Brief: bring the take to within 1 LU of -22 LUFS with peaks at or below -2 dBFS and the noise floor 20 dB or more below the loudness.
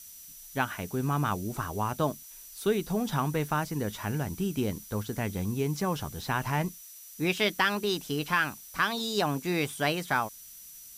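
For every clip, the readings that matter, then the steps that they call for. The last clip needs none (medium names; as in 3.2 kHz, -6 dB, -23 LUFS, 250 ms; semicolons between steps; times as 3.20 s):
steady tone 5.9 kHz; tone level -53 dBFS; noise floor -48 dBFS; noise floor target -50 dBFS; loudness -30.0 LUFS; peak level -13.0 dBFS; loudness target -22.0 LUFS
-> band-stop 5.9 kHz, Q 30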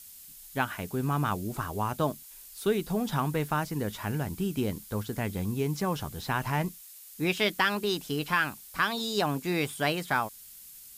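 steady tone not found; noise floor -49 dBFS; noise floor target -50 dBFS
-> noise reduction 6 dB, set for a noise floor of -49 dBFS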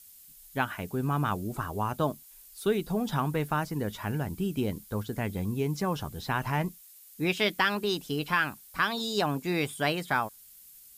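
noise floor -53 dBFS; loudness -30.5 LUFS; peak level -13.0 dBFS; loudness target -22.0 LUFS
-> trim +8.5 dB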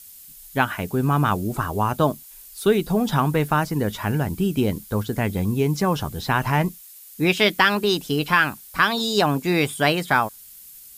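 loudness -22.0 LUFS; peak level -4.5 dBFS; noise floor -45 dBFS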